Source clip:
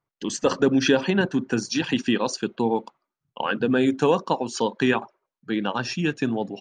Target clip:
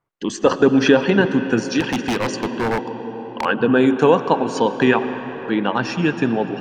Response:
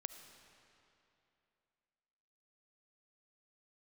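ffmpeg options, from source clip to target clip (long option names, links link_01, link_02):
-filter_complex "[0:a]asplit=2[link_01][link_02];[link_02]bass=frequency=250:gain=-6,treble=frequency=4000:gain=-14[link_03];[1:a]atrim=start_sample=2205,asetrate=25578,aresample=44100,lowshelf=frequency=140:gain=5.5[link_04];[link_03][link_04]afir=irnorm=-1:irlink=0,volume=9dB[link_05];[link_01][link_05]amix=inputs=2:normalize=0,asettb=1/sr,asplit=3[link_06][link_07][link_08];[link_06]atrim=end=1.804[link_09];[link_07]atrim=start=1.8:end=3.45,asetpts=PTS-STARTPTS,afade=type=in:duration=0.004:curve=qsin,afade=type=out:start_time=1.646:duration=0.004:curve=qsin,aeval=exprs='0.335*(abs(mod(val(0)/0.335+3,4)-2)-1)':channel_layout=same[link_10];[link_08]atrim=start=3.446[link_11];[link_09][link_10]acrossfade=duration=0.004:curve1=hsin:curve2=qsin[link_12];[link_12][link_11]acrossfade=duration=0.004:curve1=qsin:curve2=hsin,volume=-4.5dB"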